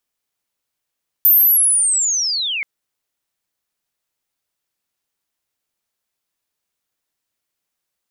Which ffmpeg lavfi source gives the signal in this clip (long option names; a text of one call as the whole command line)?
ffmpeg -f lavfi -i "aevalsrc='pow(10,(-7.5-12.5*t/1.38)/20)*sin(2*PI*(14000*t-11900*t*t/(2*1.38)))':duration=1.38:sample_rate=44100" out.wav